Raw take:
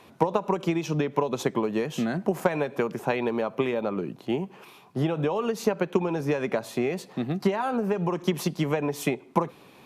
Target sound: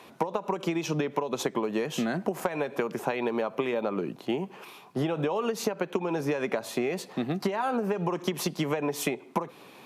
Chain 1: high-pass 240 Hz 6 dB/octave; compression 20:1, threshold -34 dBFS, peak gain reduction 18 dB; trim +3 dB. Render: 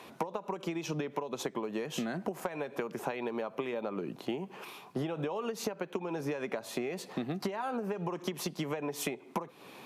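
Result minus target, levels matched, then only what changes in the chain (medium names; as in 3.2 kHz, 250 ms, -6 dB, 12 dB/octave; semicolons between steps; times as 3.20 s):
compression: peak gain reduction +7 dB
change: compression 20:1, threshold -26.5 dBFS, peak gain reduction 11 dB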